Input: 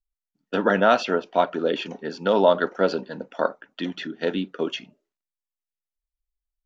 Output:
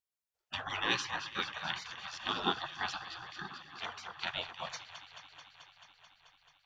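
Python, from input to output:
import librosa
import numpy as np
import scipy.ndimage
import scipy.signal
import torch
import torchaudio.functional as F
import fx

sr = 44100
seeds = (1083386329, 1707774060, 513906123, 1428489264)

y = fx.echo_alternate(x, sr, ms=109, hz=970.0, feedback_pct=88, wet_db=-12.0)
y = fx.spec_gate(y, sr, threshold_db=-20, keep='weak')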